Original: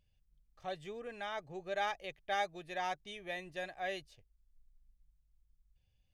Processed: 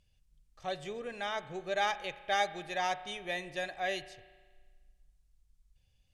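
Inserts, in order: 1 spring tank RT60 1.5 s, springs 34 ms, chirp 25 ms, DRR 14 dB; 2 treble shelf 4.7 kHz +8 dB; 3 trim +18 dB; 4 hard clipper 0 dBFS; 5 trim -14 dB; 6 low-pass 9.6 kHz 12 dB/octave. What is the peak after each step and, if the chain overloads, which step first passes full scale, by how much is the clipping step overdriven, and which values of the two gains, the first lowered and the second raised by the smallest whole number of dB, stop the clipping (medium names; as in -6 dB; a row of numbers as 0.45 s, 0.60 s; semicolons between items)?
-22.5 dBFS, -21.5 dBFS, -3.5 dBFS, -3.5 dBFS, -17.5 dBFS, -17.5 dBFS; nothing clips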